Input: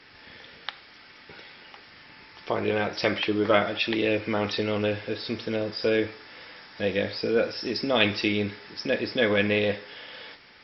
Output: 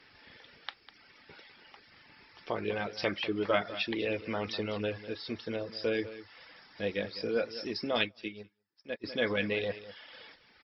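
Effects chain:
reverb reduction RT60 0.75 s
single-tap delay 200 ms −14.5 dB
0:08.01–0:09.04: expander for the loud parts 2.5 to 1, over −44 dBFS
level −6.5 dB

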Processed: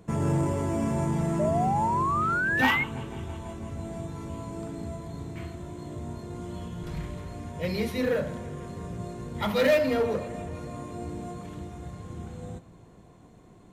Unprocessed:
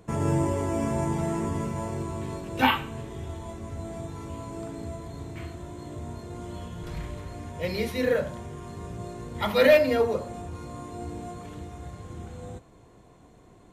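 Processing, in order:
parametric band 180 Hz +5.5 dB 0.95 octaves
bucket-brigade delay 164 ms, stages 4,096, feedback 73%, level −20 dB
in parallel at −7.5 dB: wave folding −21.5 dBFS
on the sum: sound drawn into the spectrogram rise, 0:01.39–0:02.84, 590–2,200 Hz −22 dBFS
level −4.5 dB

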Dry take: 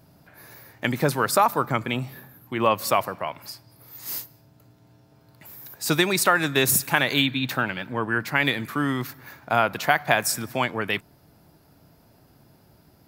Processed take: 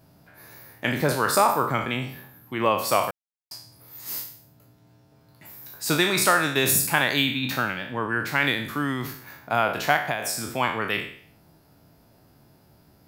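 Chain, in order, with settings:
peak hold with a decay on every bin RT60 0.56 s
0:03.11–0:03.51: silence
0:09.96–0:10.58: downward compressor 6 to 1, threshold −21 dBFS, peak gain reduction 8.5 dB
level −2.5 dB

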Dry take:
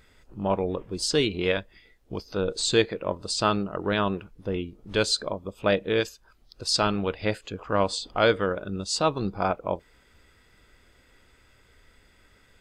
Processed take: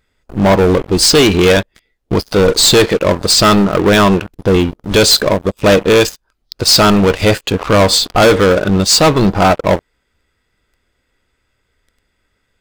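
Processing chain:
leveller curve on the samples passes 5
level +3.5 dB

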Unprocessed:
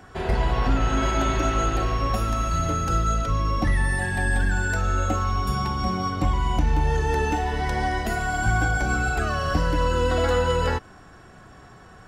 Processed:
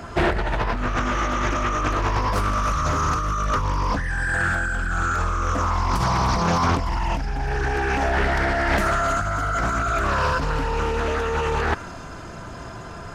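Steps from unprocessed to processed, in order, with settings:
dynamic equaliser 1,800 Hz, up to +7 dB, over −43 dBFS, Q 1.5
in parallel at +1 dB: brickwall limiter −19.5 dBFS, peak gain reduction 9 dB
on the sum: compressor whose output falls as the input rises −22 dBFS, ratio −1
on a send: delay with a high-pass on its return 278 ms, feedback 68%, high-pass 5,400 Hz, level −10 dB
on the sum: wrong playback speed 48 kHz file played as 44.1 kHz
highs frequency-modulated by the lows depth 0.63 ms

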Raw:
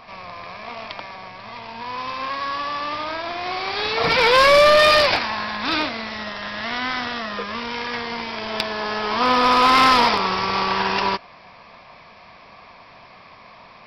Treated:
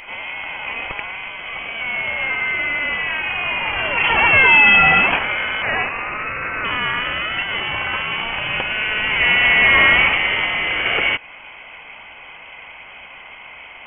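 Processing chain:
0:05.62–0:06.65: high-pass filter 400 Hz 24 dB per octave
in parallel at +2 dB: downward compressor, threshold −27 dBFS, peak gain reduction 14.5 dB
0:10.46–0:10.86: on the sum: hard clipping −17 dBFS, distortion −24 dB
voice inversion scrambler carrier 3,200 Hz

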